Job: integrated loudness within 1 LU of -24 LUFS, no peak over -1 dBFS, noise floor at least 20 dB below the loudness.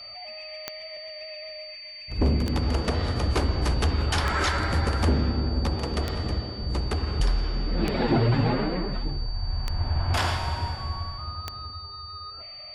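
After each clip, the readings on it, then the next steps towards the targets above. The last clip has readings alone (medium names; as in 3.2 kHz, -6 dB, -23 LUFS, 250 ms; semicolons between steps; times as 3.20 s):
clicks found 7; steady tone 4.6 kHz; tone level -39 dBFS; loudness -27.5 LUFS; peak level -9.0 dBFS; loudness target -24.0 LUFS
-> de-click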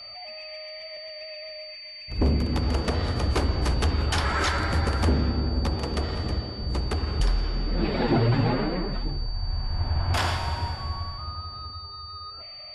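clicks found 0; steady tone 4.6 kHz; tone level -39 dBFS
-> band-stop 4.6 kHz, Q 30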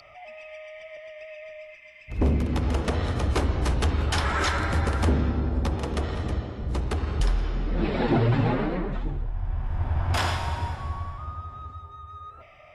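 steady tone not found; loudness -27.0 LUFS; peak level -12.0 dBFS; loudness target -24.0 LUFS
-> trim +3 dB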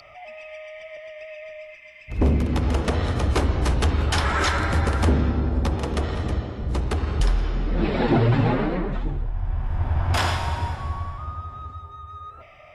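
loudness -24.0 LUFS; peak level -9.0 dBFS; noise floor -46 dBFS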